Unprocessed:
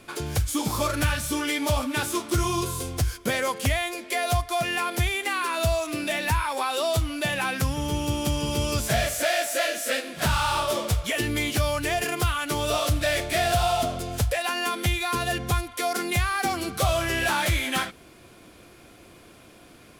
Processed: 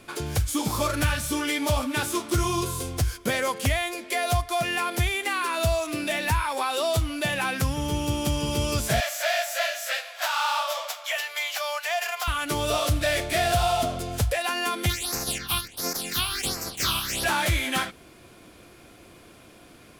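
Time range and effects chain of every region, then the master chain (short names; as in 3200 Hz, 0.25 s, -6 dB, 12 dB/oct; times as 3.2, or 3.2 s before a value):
9–12.28 steep high-pass 620 Hz 48 dB/oct + bell 9400 Hz -13 dB 0.27 oct
14.89–17.23 spectral limiter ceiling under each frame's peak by 29 dB + phaser stages 6, 1.4 Hz, lowest notch 490–3200 Hz
whole clip: dry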